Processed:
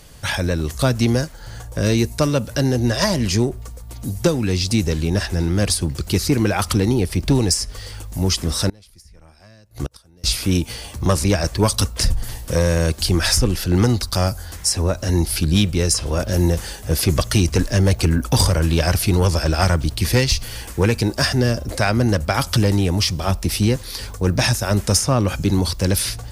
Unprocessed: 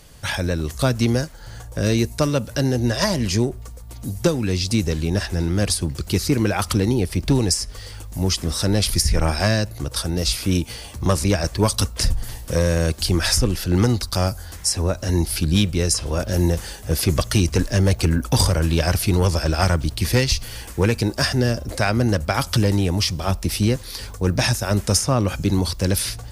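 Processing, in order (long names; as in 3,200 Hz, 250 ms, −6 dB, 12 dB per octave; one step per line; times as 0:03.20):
in parallel at −9.5 dB: soft clipping −17.5 dBFS, distortion −10 dB
0:08.69–0:10.24: on the sum: gate with flip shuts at −13 dBFS, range −30 dB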